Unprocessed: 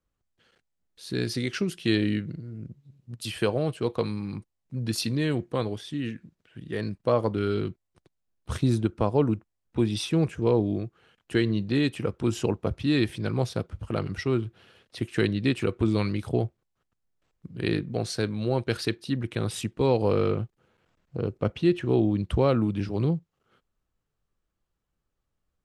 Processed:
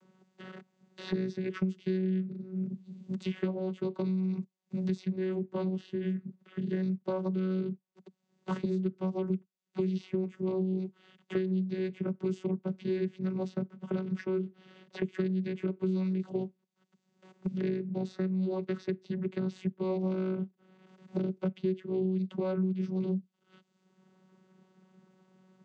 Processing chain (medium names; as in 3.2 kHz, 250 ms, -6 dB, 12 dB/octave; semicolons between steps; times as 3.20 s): dynamic bell 830 Hz, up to -4 dB, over -39 dBFS, Q 0.99; vocoder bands 16, saw 187 Hz; three bands compressed up and down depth 100%; trim -4 dB